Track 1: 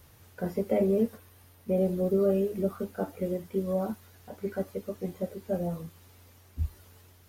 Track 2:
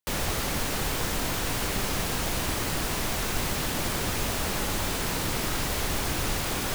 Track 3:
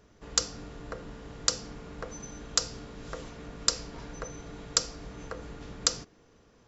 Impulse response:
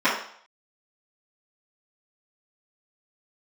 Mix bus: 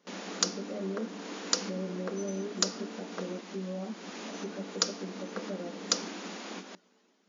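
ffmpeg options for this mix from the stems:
-filter_complex "[0:a]highpass=110,alimiter=level_in=1dB:limit=-24dB:level=0:latency=1,volume=-1dB,volume=-8.5dB,asplit=2[link_01][link_02];[1:a]volume=-11.5dB[link_03];[2:a]adelay=50,volume=-1.5dB,asplit=3[link_04][link_05][link_06];[link_04]atrim=end=3.41,asetpts=PTS-STARTPTS,afade=type=out:start_time=3.406:duration=0.004:curve=hsin[link_07];[link_05]atrim=start=3.41:end=4.33,asetpts=PTS-STARTPTS,volume=0[link_08];[link_06]atrim=start=4.33,asetpts=PTS-STARTPTS,afade=type=in:duration=0.004:curve=hsin[link_09];[link_07][link_08][link_09]concat=n=3:v=0:a=1[link_10];[link_02]apad=whole_len=297666[link_11];[link_03][link_11]sidechaincompress=threshold=-46dB:ratio=8:attack=9.8:release=390[link_12];[link_01][link_12][link_10]amix=inputs=3:normalize=0,afftfilt=real='re*between(b*sr/4096,180,7100)':imag='im*between(b*sr/4096,180,7100)':win_size=4096:overlap=0.75,lowshelf=frequency=290:gain=9"

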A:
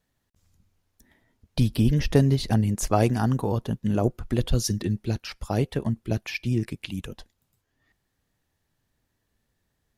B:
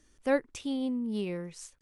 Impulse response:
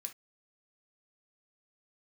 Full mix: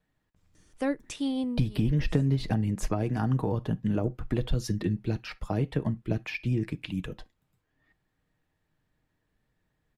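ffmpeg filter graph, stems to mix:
-filter_complex "[0:a]bass=frequency=250:gain=2,treble=frequency=4000:gain=-13,acompressor=threshold=-20dB:ratio=5,volume=-2dB,asplit=3[link_01][link_02][link_03];[link_02]volume=-5dB[link_04];[1:a]adelay=550,volume=2.5dB,asplit=2[link_05][link_06];[link_06]volume=-19.5dB[link_07];[link_03]apad=whole_len=104077[link_08];[link_05][link_08]sidechaincompress=threshold=-47dB:ratio=5:attack=16:release=301[link_09];[2:a]atrim=start_sample=2205[link_10];[link_04][link_07]amix=inputs=2:normalize=0[link_11];[link_11][link_10]afir=irnorm=-1:irlink=0[link_12];[link_01][link_09][link_12]amix=inputs=3:normalize=0,aecho=1:1:6.5:0.3,acrossover=split=360[link_13][link_14];[link_14]acompressor=threshold=-30dB:ratio=10[link_15];[link_13][link_15]amix=inputs=2:normalize=0"

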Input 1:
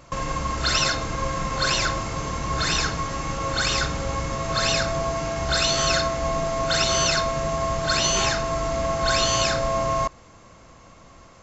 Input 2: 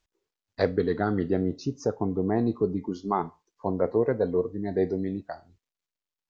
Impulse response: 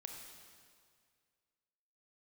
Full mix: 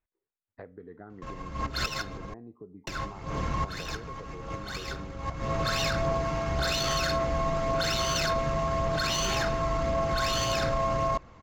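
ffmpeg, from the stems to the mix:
-filter_complex "[0:a]adynamicsmooth=sensitivity=2:basefreq=3500,aphaser=in_gain=1:out_gain=1:delay=1.1:decay=0.23:speed=1.8:type=triangular,adelay=1100,volume=-2.5dB,asplit=3[link_01][link_02][link_03];[link_01]atrim=end=2.34,asetpts=PTS-STARTPTS,afade=type=out:start_time=2.336:duration=0.004:curve=hsin[link_04];[link_02]atrim=start=2.34:end=2.87,asetpts=PTS-STARTPTS,volume=0[link_05];[link_03]atrim=start=2.87,asetpts=PTS-STARTPTS,afade=type=in:duration=0.004:curve=hsin[link_06];[link_04][link_05][link_06]concat=n=3:v=0:a=1[link_07];[1:a]lowpass=frequency=2300:width=0.5412,lowpass=frequency=2300:width=1.3066,acompressor=threshold=-34dB:ratio=6,volume=-9dB,asplit=2[link_08][link_09];[link_09]apad=whole_len=552283[link_10];[link_07][link_10]sidechaincompress=threshold=-55dB:ratio=12:attack=30:release=181[link_11];[link_11][link_08]amix=inputs=2:normalize=0,alimiter=limit=-19dB:level=0:latency=1:release=17"

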